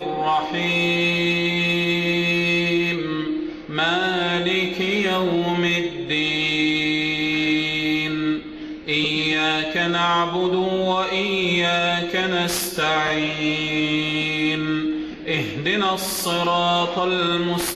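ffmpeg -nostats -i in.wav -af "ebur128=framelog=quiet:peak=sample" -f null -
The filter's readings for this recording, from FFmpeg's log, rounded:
Integrated loudness:
  I:         -20.5 LUFS
  Threshold: -30.5 LUFS
Loudness range:
  LRA:         1.7 LU
  Threshold: -40.6 LUFS
  LRA low:   -21.4 LUFS
  LRA high:  -19.7 LUFS
Sample peak:
  Peak:       -9.2 dBFS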